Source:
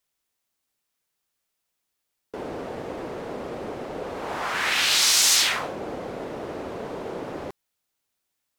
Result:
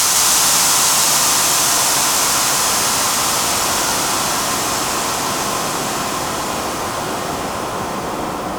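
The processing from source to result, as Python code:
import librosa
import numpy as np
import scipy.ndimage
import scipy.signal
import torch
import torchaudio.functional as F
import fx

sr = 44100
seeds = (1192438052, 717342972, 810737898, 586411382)

p1 = fx.graphic_eq(x, sr, hz=(500, 1000, 2000, 4000), db=(-7, 4, -10, -9))
p2 = fx.quant_dither(p1, sr, seeds[0], bits=8, dither='triangular')
p3 = p1 + F.gain(torch.from_numpy(p2), -8.5).numpy()
p4 = fx.paulstretch(p3, sr, seeds[1], factor=22.0, window_s=1.0, from_s=5.43)
p5 = p4 + 10.0 ** (-3.5 / 20.0) * np.pad(p4, (int(158 * sr / 1000.0), 0))[:len(p4)]
y = F.gain(torch.from_numpy(p5), 8.0).numpy()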